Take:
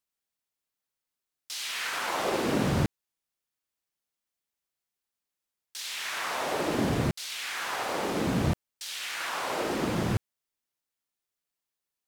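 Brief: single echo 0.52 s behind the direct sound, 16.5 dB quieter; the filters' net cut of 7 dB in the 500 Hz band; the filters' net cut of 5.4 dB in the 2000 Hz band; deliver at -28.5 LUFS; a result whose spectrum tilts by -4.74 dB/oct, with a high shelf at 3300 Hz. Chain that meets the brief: bell 500 Hz -9 dB; bell 2000 Hz -5.5 dB; high shelf 3300 Hz -3 dB; echo 0.52 s -16.5 dB; gain +4.5 dB

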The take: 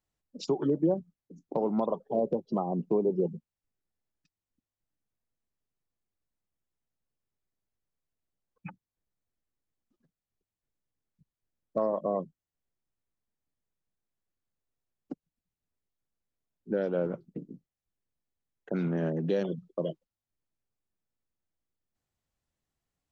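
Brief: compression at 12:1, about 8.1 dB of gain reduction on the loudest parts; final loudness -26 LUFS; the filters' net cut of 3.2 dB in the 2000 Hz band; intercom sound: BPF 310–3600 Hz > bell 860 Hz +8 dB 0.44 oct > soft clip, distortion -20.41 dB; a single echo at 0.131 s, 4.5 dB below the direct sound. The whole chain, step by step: bell 2000 Hz -5 dB; compressor 12:1, threshold -30 dBFS; BPF 310–3600 Hz; bell 860 Hz +8 dB 0.44 oct; echo 0.131 s -4.5 dB; soft clip -23.5 dBFS; gain +12 dB

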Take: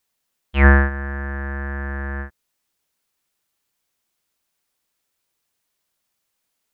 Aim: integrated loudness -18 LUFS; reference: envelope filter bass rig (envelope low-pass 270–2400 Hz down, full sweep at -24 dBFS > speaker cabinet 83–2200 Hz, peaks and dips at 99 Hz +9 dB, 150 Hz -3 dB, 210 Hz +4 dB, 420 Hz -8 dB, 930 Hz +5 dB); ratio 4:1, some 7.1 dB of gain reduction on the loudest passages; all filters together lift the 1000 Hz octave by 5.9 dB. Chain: bell 1000 Hz +4.5 dB; compressor 4:1, threshold -15 dBFS; envelope low-pass 270–2400 Hz down, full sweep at -24 dBFS; speaker cabinet 83–2200 Hz, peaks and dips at 99 Hz +9 dB, 150 Hz -3 dB, 210 Hz +4 dB, 420 Hz -8 dB, 930 Hz +5 dB; gain +6.5 dB

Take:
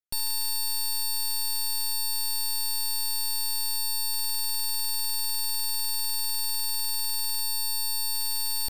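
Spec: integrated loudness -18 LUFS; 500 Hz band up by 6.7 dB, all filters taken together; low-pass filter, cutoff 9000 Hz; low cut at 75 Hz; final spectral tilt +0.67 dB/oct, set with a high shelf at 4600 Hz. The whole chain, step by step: HPF 75 Hz; LPF 9000 Hz; bell 500 Hz +8.5 dB; high shelf 4600 Hz -7.5 dB; gain +16 dB

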